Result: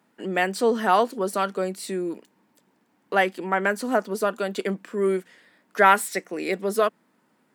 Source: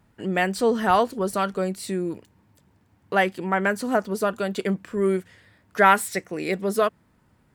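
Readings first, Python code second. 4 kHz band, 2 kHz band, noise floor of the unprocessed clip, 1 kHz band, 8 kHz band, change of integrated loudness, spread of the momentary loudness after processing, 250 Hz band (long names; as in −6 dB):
0.0 dB, 0.0 dB, −62 dBFS, 0.0 dB, 0.0 dB, −0.5 dB, 10 LU, −2.5 dB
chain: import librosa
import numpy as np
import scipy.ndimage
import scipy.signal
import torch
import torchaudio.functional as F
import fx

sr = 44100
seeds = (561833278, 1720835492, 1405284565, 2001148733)

y = scipy.signal.sosfilt(scipy.signal.butter(4, 210.0, 'highpass', fs=sr, output='sos'), x)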